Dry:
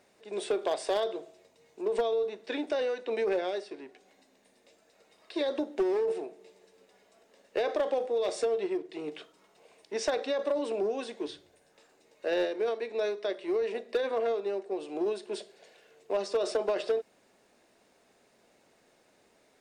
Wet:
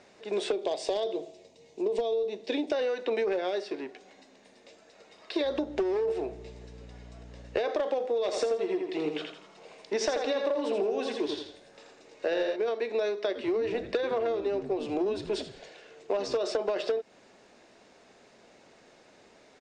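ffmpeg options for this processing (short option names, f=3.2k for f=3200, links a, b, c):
-filter_complex "[0:a]asettb=1/sr,asplit=3[a][b][c];[a]atrim=end=0.524[d];[b]atrim=start=0.52:end=2.72,asetpts=PTS-STARTPTS,afade=t=in:d=0.004:c=qsin,afade=t=out:st=2.196:d=0.004:c=qsin,equalizer=f=1.4k:t=o:w=0.95:g=-14[e];[c]atrim=start=2.716[f];[d][e]acrossfade=d=0.004:c1=hsin:c2=qsin[g];[g][f]acrossfade=d=0.004:c1=qsin:c2=hsin,asettb=1/sr,asplit=3[h][i][j];[h]atrim=end=5.444[k];[i]atrim=start=5.44:end=7.58,asetpts=PTS-STARTPTS,afade=t=in:d=0.004:c=qsin,afade=t=out:st=2.136:d=0.004:c=qsin,aeval=exprs='val(0)+0.002*(sin(2*PI*60*n/s)+sin(2*PI*2*60*n/s)/2+sin(2*PI*3*60*n/s)/3+sin(2*PI*4*60*n/s)/4+sin(2*PI*5*60*n/s)/5)':c=same[l];[j]atrim=start=7.576[m];[k][l]acrossfade=d=0.004:c1=hsin:c2=qsin[n];[n][m]acrossfade=d=0.004:c1=qsin:c2=hsin,asplit=3[o][p][q];[o]afade=t=out:st=8.31:d=0.02[r];[p]aecho=1:1:83|166|249|332:0.562|0.197|0.0689|0.0241,afade=t=in:st=8.31:d=0.02,afade=t=out:st=12.55:d=0.02[s];[q]afade=t=in:st=12.55:d=0.02[t];[r][s][t]amix=inputs=3:normalize=0,asettb=1/sr,asplit=3[u][v][w];[u]atrim=end=13.274[x];[v]atrim=start=13.27:end=16.38,asetpts=PTS-STARTPTS,afade=t=in:d=0.004:c=qsin,afade=t=out:st=3.106:d=0.004:c=qsin,asplit=4[y][z][aa][ab];[z]adelay=82,afreqshift=-130,volume=-15dB[ac];[aa]adelay=164,afreqshift=-260,volume=-24.1dB[ad];[ab]adelay=246,afreqshift=-390,volume=-33.2dB[ae];[y][ac][ad][ae]amix=inputs=4:normalize=0,atrim=end_sample=137151[af];[w]atrim=start=16.376[ag];[x][af]acrossfade=d=0.004:c1=hsin:c2=qsin[ah];[ah][ag]acrossfade=d=0.004:c1=qsin:c2=hsin,lowpass=f=7.1k:w=0.5412,lowpass=f=7.1k:w=1.3066,acompressor=threshold=-34dB:ratio=6,volume=8dB"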